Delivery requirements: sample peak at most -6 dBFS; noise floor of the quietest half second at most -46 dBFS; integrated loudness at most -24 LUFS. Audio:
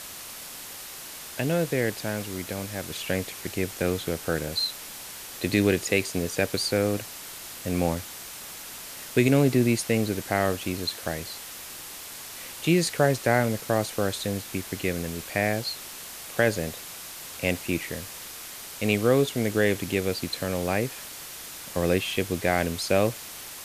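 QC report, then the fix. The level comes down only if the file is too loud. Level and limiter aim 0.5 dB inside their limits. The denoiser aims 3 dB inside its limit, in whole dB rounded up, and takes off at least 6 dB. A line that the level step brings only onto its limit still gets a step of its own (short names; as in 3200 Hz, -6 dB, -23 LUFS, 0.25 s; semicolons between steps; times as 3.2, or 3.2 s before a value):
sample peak -7.5 dBFS: OK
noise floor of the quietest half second -40 dBFS: fail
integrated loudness -27.5 LUFS: OK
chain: denoiser 9 dB, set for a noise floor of -40 dBFS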